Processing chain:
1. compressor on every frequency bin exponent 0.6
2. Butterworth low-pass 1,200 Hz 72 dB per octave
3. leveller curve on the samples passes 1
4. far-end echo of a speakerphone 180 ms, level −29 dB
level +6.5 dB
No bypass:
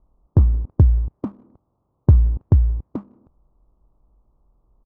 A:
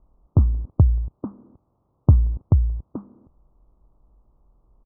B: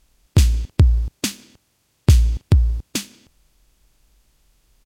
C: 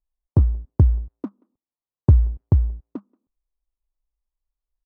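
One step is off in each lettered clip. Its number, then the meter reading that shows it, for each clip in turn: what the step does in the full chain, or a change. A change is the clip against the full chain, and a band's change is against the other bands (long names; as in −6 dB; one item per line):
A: 3, change in crest factor +2.5 dB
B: 2, 1 kHz band +2.0 dB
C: 1, change in momentary loudness spread +2 LU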